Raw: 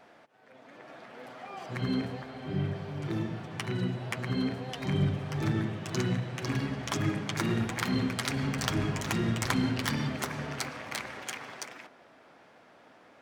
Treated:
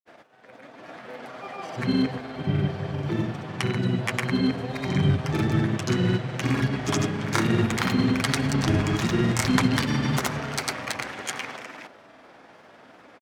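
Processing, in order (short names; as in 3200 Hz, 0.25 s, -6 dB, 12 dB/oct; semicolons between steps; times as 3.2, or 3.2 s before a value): grains, pitch spread up and down by 0 st; gain +8 dB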